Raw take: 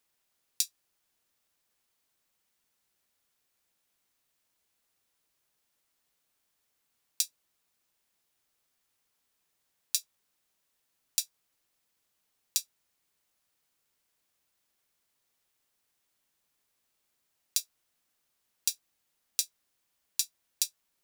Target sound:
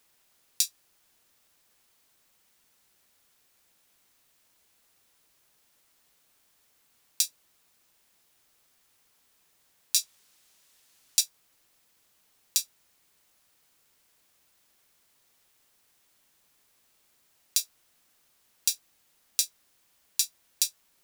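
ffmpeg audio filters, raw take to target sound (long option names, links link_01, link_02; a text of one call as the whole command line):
ffmpeg -i in.wav -filter_complex "[0:a]asettb=1/sr,asplit=3[link_01][link_02][link_03];[link_01]atrim=end=9.964[link_04];[link_02]atrim=start=9.96:end=11.21,asetpts=PTS-STARTPTS,afade=type=in:duration=0.004:curve=qsin,afade=type=out:start_time=1.246:duration=0.004:curve=qsin,equalizer=frequency=5400:width=0.38:gain=6[link_05];[link_03]atrim=start=11.206[link_06];[link_04][link_05]acrossfade=duration=0.004:curve1=hsin:curve2=qsin[link_07];[link_07][link_06]acrossfade=duration=0.004:curve1=qsin:curve2=hsin,alimiter=level_in=11.5dB:limit=-1dB:release=50:level=0:latency=1,volume=-1dB" out.wav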